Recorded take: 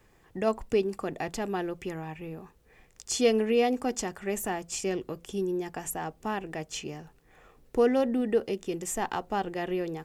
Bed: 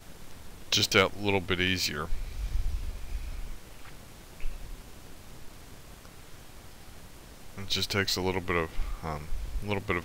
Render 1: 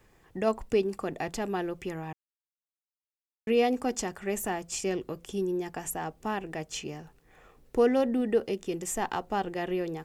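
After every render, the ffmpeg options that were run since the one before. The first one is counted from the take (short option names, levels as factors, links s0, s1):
-filter_complex "[0:a]asplit=3[s0][s1][s2];[s0]atrim=end=2.13,asetpts=PTS-STARTPTS,afade=t=out:st=2.126:d=0.004:c=hsin[s3];[s1]atrim=start=2.13:end=3.47,asetpts=PTS-STARTPTS,volume=0[s4];[s2]atrim=start=3.47,asetpts=PTS-STARTPTS,afade=t=in:d=0.004:c=hsin[s5];[s3][s4][s5]concat=n=3:v=0:a=1"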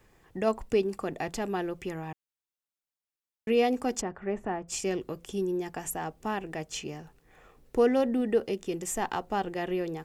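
-filter_complex "[0:a]asplit=3[s0][s1][s2];[s0]afade=t=out:st=4:d=0.02[s3];[s1]lowpass=1600,afade=t=in:st=4:d=0.02,afade=t=out:st=4.67:d=0.02[s4];[s2]afade=t=in:st=4.67:d=0.02[s5];[s3][s4][s5]amix=inputs=3:normalize=0"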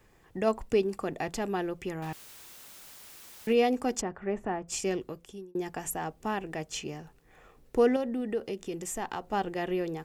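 -filter_complex "[0:a]asettb=1/sr,asplit=3[s0][s1][s2];[s0]atrim=end=2.024[s3];[s1]atrim=start=2.02:end=3.53,asetpts=PTS-STARTPTS,afade=t=in:d=0.004:c=qsin,afade=t=out:st=1.506:d=0.004:c=qsin,aeval=exprs='val(0)+0.5*0.01*sgn(val(0))':c=same[s4];[s2]atrim=start=3.526[s5];[s3][s4]acrossfade=d=0.004:c1=hsin:c2=qsin[s6];[s6][s5]acrossfade=d=0.004:c1=qsin:c2=hsin,asettb=1/sr,asplit=3[s7][s8][s9];[s7]atrim=end=7.964[s10];[s8]atrim=start=7.96:end=9.33,asetpts=PTS-STARTPTS,afade=t=in:d=0.004:c=qsin,afade=t=out:st=1.366:d=0.004:c=qsin,acompressor=threshold=0.0141:ratio=1.5:attack=3.2:release=140:knee=1:detection=peak[s11];[s9]atrim=start=9.326[s12];[s10][s11]acrossfade=d=0.004:c1=hsin:c2=qsin[s13];[s13][s12]acrossfade=d=0.004:c1=qsin:c2=hsin,asplit=2[s14][s15];[s14]atrim=end=5.55,asetpts=PTS-STARTPTS,afade=t=out:st=4.92:d=0.63[s16];[s15]atrim=start=5.55,asetpts=PTS-STARTPTS,afade=t=in:d=0.004:c=hsin[s17];[s16][s17]concat=n=2:v=0:a=1"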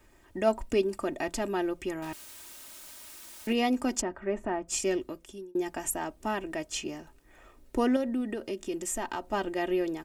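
-af "equalizer=f=8900:w=1.4:g=3,aecho=1:1:3.2:0.62"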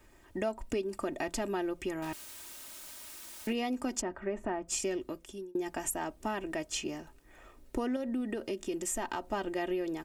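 -af "acompressor=threshold=0.0316:ratio=5"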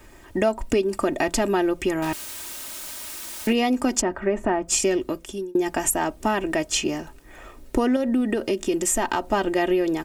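-af "volume=3.98"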